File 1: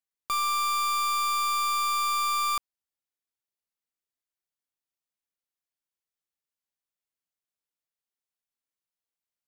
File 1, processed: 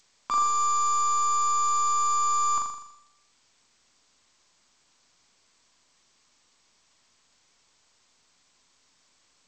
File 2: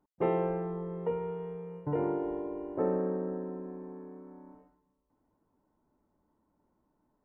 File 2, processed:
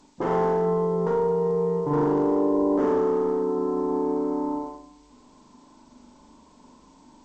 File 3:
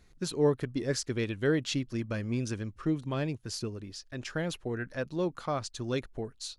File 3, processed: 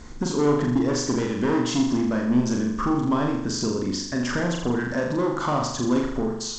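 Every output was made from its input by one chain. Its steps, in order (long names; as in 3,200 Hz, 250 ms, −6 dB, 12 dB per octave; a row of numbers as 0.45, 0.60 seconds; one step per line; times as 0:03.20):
hard clipping −29.5 dBFS
brickwall limiter −37 dBFS
downward compressor 6 to 1, threshold −43 dBFS
thirty-one-band graphic EQ 100 Hz −12 dB, 250 Hz +9 dB, 1,000 Hz +9 dB, 2,500 Hz −10 dB, 4,000 Hz −10 dB
flutter between parallel walls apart 7 metres, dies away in 0.76 s
G.722 64 kbit/s 16,000 Hz
loudness normalisation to −24 LKFS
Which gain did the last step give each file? +14.5, +16.0, +18.5 decibels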